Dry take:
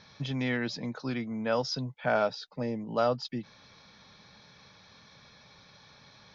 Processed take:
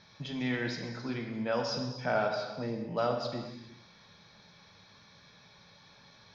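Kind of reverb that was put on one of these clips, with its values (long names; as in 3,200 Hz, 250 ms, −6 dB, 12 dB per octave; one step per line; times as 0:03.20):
reverb whose tail is shaped and stops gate 450 ms falling, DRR 2 dB
level −4 dB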